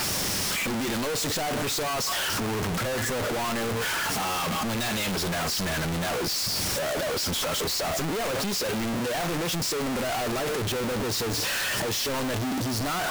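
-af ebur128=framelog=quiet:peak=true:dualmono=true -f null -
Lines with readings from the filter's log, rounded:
Integrated loudness:
  I:         -23.7 LUFS
  Threshold: -33.7 LUFS
Loudness range:
  LRA:         0.8 LU
  Threshold: -43.7 LUFS
  LRA low:   -24.1 LUFS
  LRA high:  -23.4 LUFS
True peak:
  Peak:      -22.1 dBFS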